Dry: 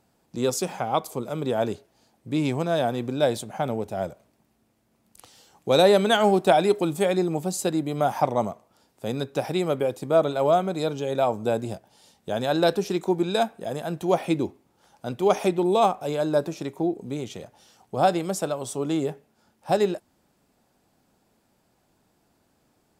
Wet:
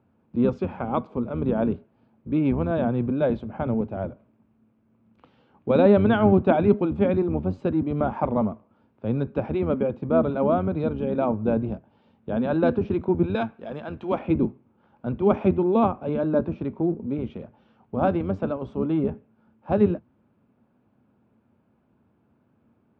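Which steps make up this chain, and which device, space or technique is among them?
13.35–14.19 tilt +3.5 dB/oct; sub-octave bass pedal (octaver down 1 oct, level -1 dB; speaker cabinet 70–2300 Hz, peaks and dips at 230 Hz +9 dB, 740 Hz -6 dB, 1900 Hz -9 dB)

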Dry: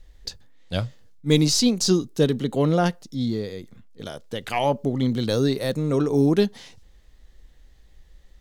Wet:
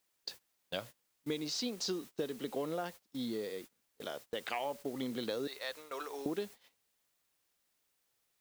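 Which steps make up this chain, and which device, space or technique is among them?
5.47–6.26 HPF 1000 Hz 12 dB/oct; baby monitor (BPF 350–4300 Hz; compressor 10:1, threshold -29 dBFS, peak gain reduction 13.5 dB; white noise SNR 16 dB; gate -43 dBFS, range -22 dB); gain -4.5 dB

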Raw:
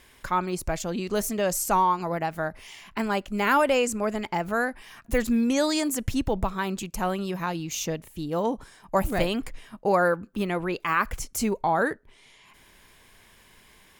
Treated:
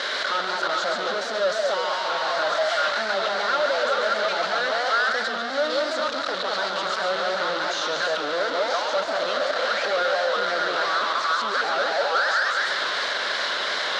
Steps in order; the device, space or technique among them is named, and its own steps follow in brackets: delay with a stepping band-pass 0.192 s, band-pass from 760 Hz, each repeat 0.7 oct, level -2.5 dB; home computer beeper (infinite clipping; speaker cabinet 540–4900 Hz, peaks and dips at 580 Hz +10 dB, 920 Hz -5 dB, 1400 Hz +10 dB, 2500 Hz -9 dB, 4000 Hz +8 dB); warbling echo 0.139 s, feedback 61%, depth 209 cents, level -6 dB

